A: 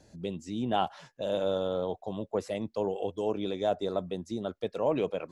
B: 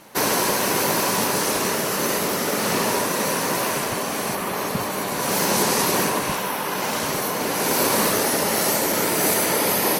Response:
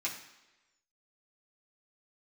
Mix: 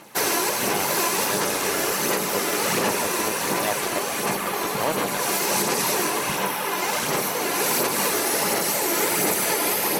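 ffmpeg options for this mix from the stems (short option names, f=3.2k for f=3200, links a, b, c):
-filter_complex "[0:a]acrusher=bits=3:mix=0:aa=0.5,volume=1.5dB[a];[1:a]aphaser=in_gain=1:out_gain=1:delay=3:decay=0.42:speed=1.4:type=sinusoidal,volume=-2.5dB,asplit=2[b][c];[c]volume=-7.5dB[d];[2:a]atrim=start_sample=2205[e];[d][e]afir=irnorm=-1:irlink=0[f];[a][b][f]amix=inputs=3:normalize=0,lowshelf=f=110:g=-8,alimiter=limit=-11.5dB:level=0:latency=1:release=278"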